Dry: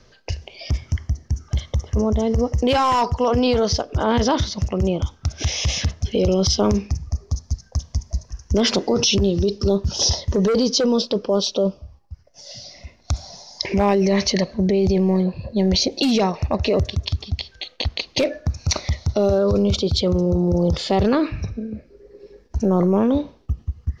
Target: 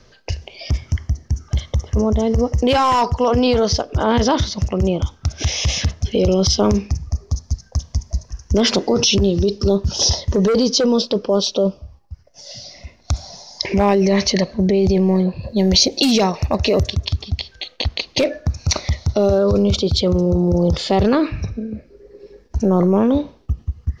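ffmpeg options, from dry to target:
-filter_complex "[0:a]asettb=1/sr,asplit=3[a][b][c];[a]atrim=end=15.434[d];[b]atrim=start=15.43:end=16.94,asetpts=PTS-STARTPTS,afade=t=in:d=0.004:c=qsin,afade=t=out:st=1.506:d=0.004:c=qsin,highshelf=f=5.5k:g=10[e];[c]atrim=start=16.936[f];[d][e]acrossfade=d=0.004:c1=hsin:c2=qsin[g];[g][f]acrossfade=d=0.004:c1=qsin:c2=hsin,volume=2.5dB"

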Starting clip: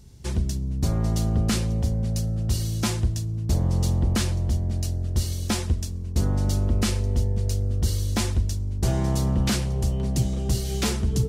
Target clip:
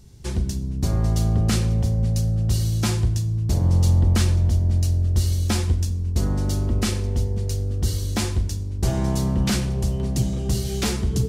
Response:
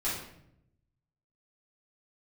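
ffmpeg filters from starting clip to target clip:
-filter_complex "[0:a]asplit=2[a][b];[1:a]atrim=start_sample=2205,asetrate=41895,aresample=44100[c];[b][c]afir=irnorm=-1:irlink=0,volume=-15dB[d];[a][d]amix=inputs=2:normalize=0"

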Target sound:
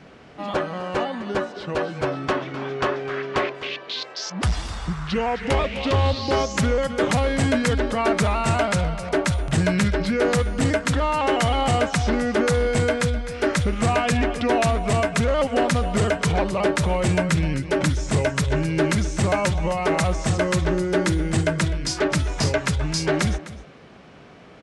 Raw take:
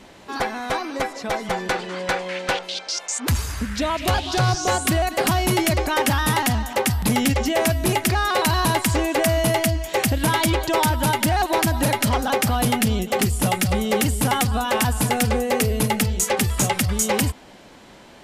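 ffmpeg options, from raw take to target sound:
-filter_complex "[0:a]highpass=65,highshelf=f=7.4k:g=-11.5,asplit=2[a][b];[b]aecho=0:1:189:0.158[c];[a][c]amix=inputs=2:normalize=0,asetrate=32667,aresample=44100"

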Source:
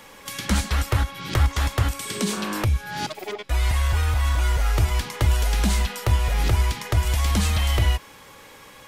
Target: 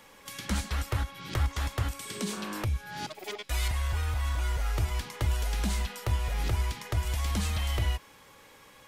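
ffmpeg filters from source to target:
-filter_complex "[0:a]asettb=1/sr,asplit=3[a][b][c];[a]atrim=end=3.244[d];[b]atrim=start=3.24:end=3.68,asetpts=PTS-STARTPTS,afade=t=in:d=0.004:c=qsin,afade=t=out:st=0.436:d=0.004:c=qsin,highshelf=f=2.3k:g=10[e];[c]atrim=start=3.676[f];[d][e]acrossfade=d=0.004:c1=hsin:c2=qsin[g];[g][f]acrossfade=d=0.004:c1=qsin:c2=hsin,volume=-8.5dB"

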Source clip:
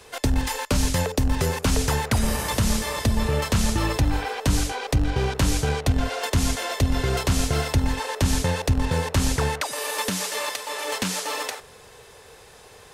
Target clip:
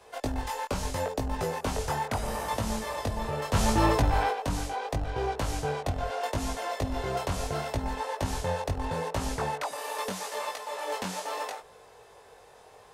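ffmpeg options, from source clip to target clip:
-filter_complex "[0:a]equalizer=f=740:w=0.83:g=11,asettb=1/sr,asplit=3[a][b][c];[a]atrim=end=3.534[d];[b]atrim=start=3.53:end=4.31,asetpts=PTS-STARTPTS,afade=t=in:d=0.004:c=qsin,afade=t=out:st=0.776:d=0.004:c=qsin,aeval=exprs='0.562*sin(PI/2*1.58*val(0)/0.562)':c=same[e];[c]atrim=start=4.306[f];[d][e]acrossfade=d=0.004:c1=hsin:c2=qsin[g];[g][f]acrossfade=d=0.004:c1=qsin:c2=hsin,flanger=delay=18:depth=3.4:speed=0.76,volume=-8.5dB"

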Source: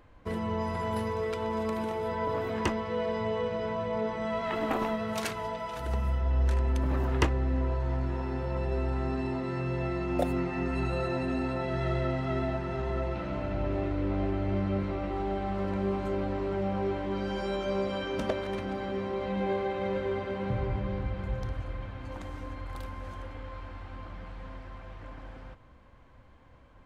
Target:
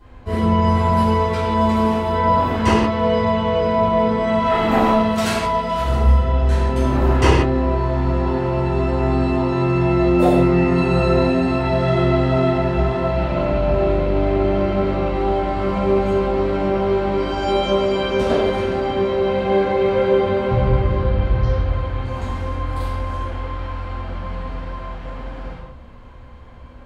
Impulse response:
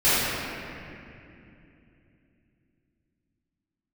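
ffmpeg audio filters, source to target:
-filter_complex "[0:a]asettb=1/sr,asplit=3[a][b][c];[a]atrim=end=20.994[d];[b]atrim=start=20.99:end=21.71,asetpts=PTS-STARTPTS,afade=t=in:d=0.004:c=qsin,afade=t=out:st=0.716:d=0.004:c=qsin,lowpass=f=5.9k:w=0.5412,lowpass=f=5.9k:w=1.3066[e];[c]atrim=start=21.706[f];[d][e]acrossfade=d=0.004:c1=hsin:c2=qsin[g];[g][f]acrossfade=d=0.004:c1=qsin:c2=hsin[h];[1:a]atrim=start_sample=2205,afade=t=out:st=0.41:d=0.01,atrim=end_sample=18522,asetrate=79380,aresample=44100[i];[h][i]afir=irnorm=-1:irlink=0,volume=-1.5dB"

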